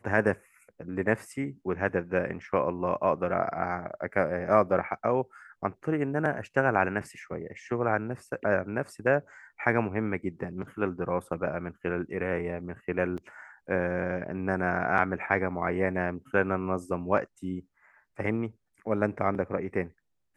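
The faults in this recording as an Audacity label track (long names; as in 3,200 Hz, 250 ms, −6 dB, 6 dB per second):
13.170000	13.180000	drop-out 8.3 ms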